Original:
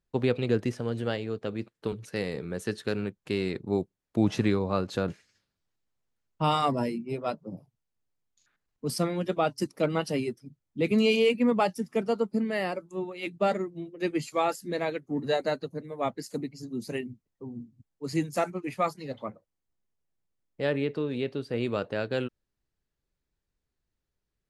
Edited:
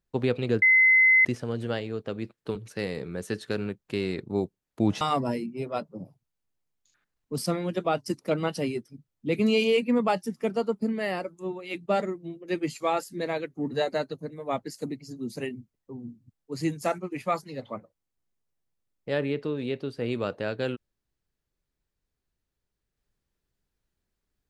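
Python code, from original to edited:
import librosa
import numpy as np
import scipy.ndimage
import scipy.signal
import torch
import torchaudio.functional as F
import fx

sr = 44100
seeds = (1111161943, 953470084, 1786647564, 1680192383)

y = fx.edit(x, sr, fx.insert_tone(at_s=0.62, length_s=0.63, hz=2050.0, db=-15.0),
    fx.cut(start_s=4.38, length_s=2.15), tone=tone)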